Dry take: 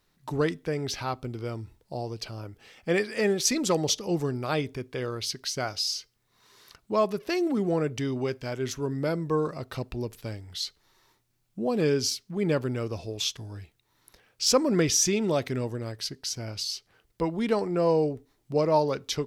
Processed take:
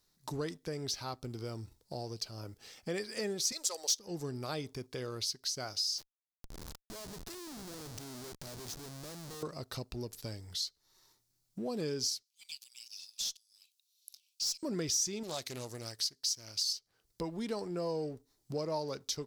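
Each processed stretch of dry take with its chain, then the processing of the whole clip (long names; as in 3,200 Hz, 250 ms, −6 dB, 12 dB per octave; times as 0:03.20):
0:03.52–0:03.98: high-pass filter 480 Hz 24 dB per octave + high-shelf EQ 3,800 Hz +11 dB
0:05.98–0:09.43: downward compressor 2 to 1, threshold −46 dBFS + amplitude modulation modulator 80 Hz, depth 30% + comparator with hysteresis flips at −50.5 dBFS
0:12.23–0:14.63: Butterworth high-pass 2,500 Hz 72 dB per octave + tube saturation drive 25 dB, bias 0.3
0:15.23–0:16.73: tilt shelving filter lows −6.5 dB, about 1,500 Hz + highs frequency-modulated by the lows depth 0.41 ms
whole clip: high shelf with overshoot 3,600 Hz +8 dB, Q 1.5; downward compressor 2 to 1, threshold −39 dBFS; leveller curve on the samples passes 1; level −6 dB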